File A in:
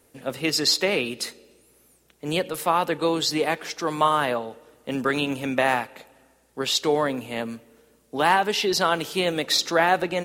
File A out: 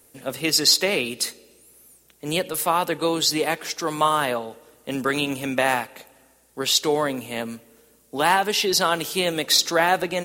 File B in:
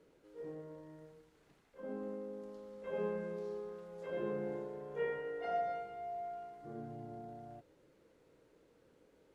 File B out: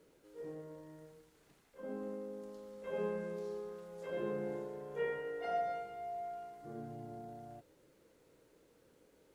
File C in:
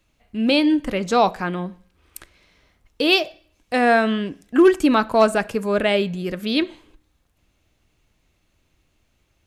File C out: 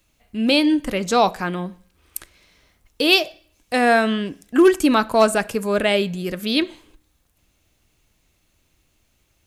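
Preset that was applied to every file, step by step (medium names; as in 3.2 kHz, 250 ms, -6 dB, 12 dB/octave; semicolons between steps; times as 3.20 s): treble shelf 5.9 kHz +10.5 dB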